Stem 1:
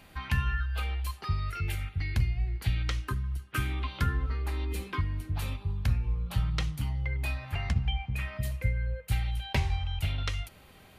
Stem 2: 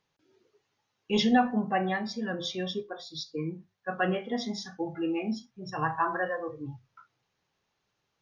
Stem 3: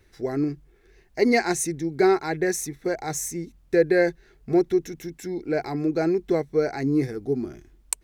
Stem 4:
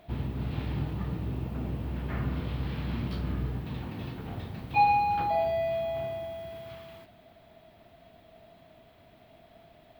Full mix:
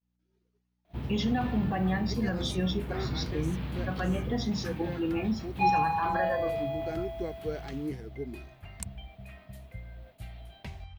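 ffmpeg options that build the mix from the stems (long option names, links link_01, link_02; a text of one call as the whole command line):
ffmpeg -i stem1.wav -i stem2.wav -i stem3.wav -i stem4.wav -filter_complex "[0:a]adelay=1100,volume=-15dB[link_01];[1:a]aeval=exprs='val(0)+0.000794*(sin(2*PI*60*n/s)+sin(2*PI*2*60*n/s)/2+sin(2*PI*3*60*n/s)/3+sin(2*PI*4*60*n/s)/4+sin(2*PI*5*60*n/s)/5)':channel_layout=same,volume=0dB,asplit=2[link_02][link_03];[2:a]adelay=900,volume=-13dB[link_04];[3:a]adelay=850,volume=-2.5dB[link_05];[link_03]apad=whole_len=394101[link_06];[link_04][link_06]sidechaincompress=threshold=-38dB:ratio=8:attack=16:release=543[link_07];[link_01][link_02]amix=inputs=2:normalize=0,equalizer=frequency=190:width=4.6:gain=9.5,alimiter=limit=-22dB:level=0:latency=1:release=117,volume=0dB[link_08];[link_07][link_05][link_08]amix=inputs=3:normalize=0,agate=range=-33dB:threshold=-50dB:ratio=3:detection=peak" out.wav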